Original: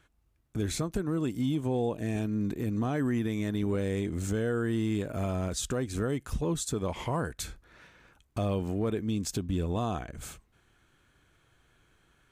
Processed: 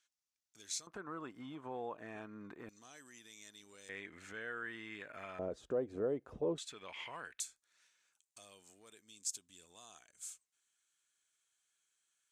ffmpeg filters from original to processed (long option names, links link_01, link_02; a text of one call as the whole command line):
ffmpeg -i in.wav -af "asetnsamples=nb_out_samples=441:pad=0,asendcmd='0.87 bandpass f 1200;2.69 bandpass f 6300;3.89 bandpass f 1900;5.39 bandpass f 520;6.58 bandpass f 2500;7.4 bandpass f 7500',bandpass=frequency=5900:width_type=q:width=2.1:csg=0" out.wav